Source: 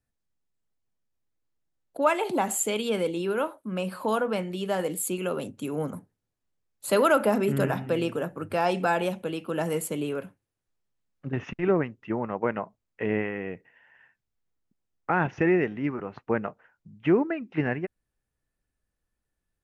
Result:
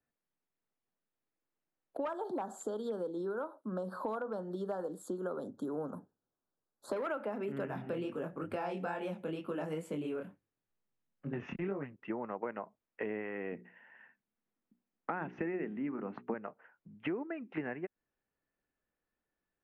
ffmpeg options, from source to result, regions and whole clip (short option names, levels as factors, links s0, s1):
-filter_complex "[0:a]asettb=1/sr,asplit=3[s0][s1][s2];[s0]atrim=end=2.054[s3];[s1]atrim=start=2.05:end=7.07,asetpts=PTS-STARTPTS,afade=t=in:d=0.004:c=qsin,afade=t=out:st=5.016:d=0.004:c=qsin,asuperstop=centerf=2400:order=8:qfactor=1.2,asoftclip=type=hard:threshold=0.119[s4];[s2]atrim=start=7.066[s5];[s3][s4]acrossfade=d=0.004:c1=hsin:c2=qsin[s6];[s6][s5]acrossfade=d=0.004:c1=qsin:c2=hsin,asettb=1/sr,asplit=3[s7][s8][s9];[s7]atrim=end=7.674[s10];[s8]atrim=start=7.67:end=11.96,asetpts=PTS-STARTPTS,afade=t=in:d=0.004:c=qsin,afade=t=out:st=4.286:d=0.004:c=qsin,bass=f=250:g=8,treble=f=4000:g=7,flanger=delay=20:depth=6:speed=2.2[s11];[s9]atrim=start=11.956[s12];[s10][s11]acrossfade=d=0.004:c1=hsin:c2=qsin[s13];[s13][s12]acrossfade=d=0.004:c1=qsin:c2=hsin,asettb=1/sr,asplit=3[s14][s15][s16];[s14]atrim=end=13.524[s17];[s15]atrim=start=13.52:end=16.34,asetpts=PTS-STARTPTS,afade=t=in:d=0.004:c=qsin,afade=t=out:st=2.816:d=0.004:c=qsin,equalizer=f=220:t=o:w=0.73:g=10.5,bandreject=f=60:t=h:w=6,bandreject=f=120:t=h:w=6,bandreject=f=180:t=h:w=6,bandreject=f=240:t=h:w=6,bandreject=f=300:t=h:w=6,bandreject=f=360:t=h:w=6,bandreject=f=420:t=h:w=6[s18];[s16]atrim=start=16.336[s19];[s17][s18]acrossfade=d=0.004:c1=hsin:c2=qsin[s20];[s20][s19]acrossfade=d=0.004:c1=qsin:c2=hsin,acrossover=split=8300[s21][s22];[s22]acompressor=threshold=0.00398:ratio=4:attack=1:release=60[s23];[s21][s23]amix=inputs=2:normalize=0,acrossover=split=190 2900:gain=0.178 1 0.158[s24][s25][s26];[s24][s25][s26]amix=inputs=3:normalize=0,acompressor=threshold=0.0178:ratio=6"